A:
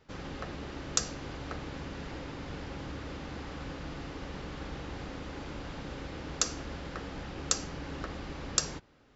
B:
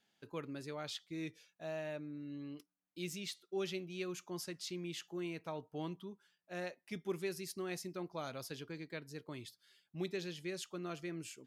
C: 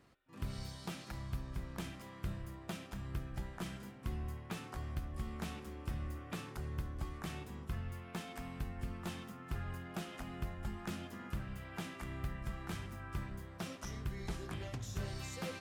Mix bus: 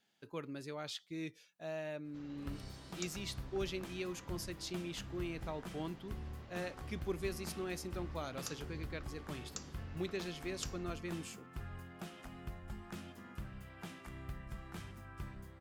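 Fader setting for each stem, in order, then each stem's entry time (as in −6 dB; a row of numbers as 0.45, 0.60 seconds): −17.0, 0.0, −5.0 decibels; 2.05, 0.00, 2.05 seconds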